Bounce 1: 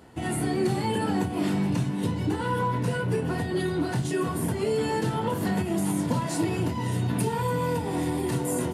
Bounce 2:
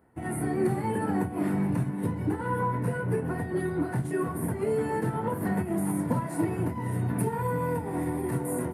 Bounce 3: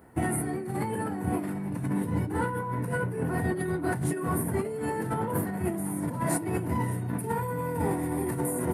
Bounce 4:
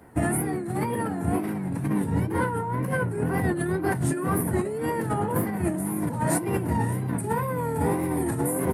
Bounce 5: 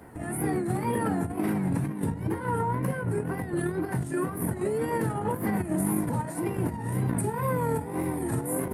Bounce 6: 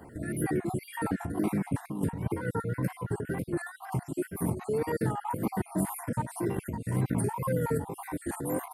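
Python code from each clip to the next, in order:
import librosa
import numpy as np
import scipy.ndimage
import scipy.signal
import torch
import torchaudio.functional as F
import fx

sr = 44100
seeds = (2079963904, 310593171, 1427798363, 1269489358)

y1 = fx.band_shelf(x, sr, hz=4500.0, db=-15.5, octaves=1.7)
y1 = fx.upward_expand(y1, sr, threshold_db=-46.0, expansion=1.5)
y2 = fx.high_shelf(y1, sr, hz=5000.0, db=5.5)
y2 = fx.over_compress(y2, sr, threshold_db=-34.0, ratio=-1.0)
y2 = y2 * librosa.db_to_amplitude(4.0)
y3 = fx.wow_flutter(y2, sr, seeds[0], rate_hz=2.1, depth_cents=120.0)
y3 = y3 * librosa.db_to_amplitude(3.5)
y4 = fx.over_compress(y3, sr, threshold_db=-28.0, ratio=-0.5)
y5 = fx.spec_dropout(y4, sr, seeds[1], share_pct=45)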